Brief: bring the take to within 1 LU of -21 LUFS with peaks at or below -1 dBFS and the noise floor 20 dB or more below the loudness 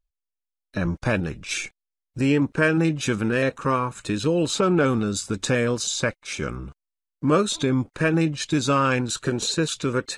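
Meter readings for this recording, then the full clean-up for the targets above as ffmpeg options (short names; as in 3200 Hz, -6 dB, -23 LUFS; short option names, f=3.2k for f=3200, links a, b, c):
loudness -23.5 LUFS; peak -8.5 dBFS; loudness target -21.0 LUFS
-> -af "volume=2.5dB"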